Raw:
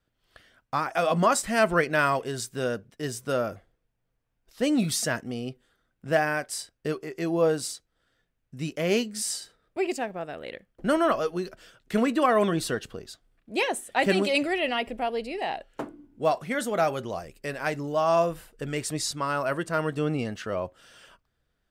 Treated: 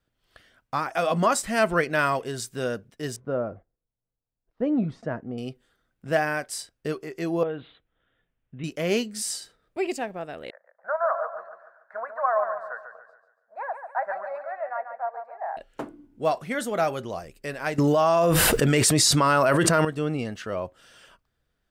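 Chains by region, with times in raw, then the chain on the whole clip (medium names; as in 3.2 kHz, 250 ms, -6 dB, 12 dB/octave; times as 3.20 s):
3.16–5.38 s: low-pass 1 kHz + gate -57 dBFS, range -11 dB
7.43–8.64 s: steep low-pass 3.6 kHz 96 dB/octave + compression 2:1, threshold -32 dBFS
10.50–15.57 s: elliptic band-pass 610–1600 Hz + feedback delay 142 ms, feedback 40%, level -8 dB
17.78–19.85 s: high-pass 61 Hz + level flattener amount 100%
whole clip: none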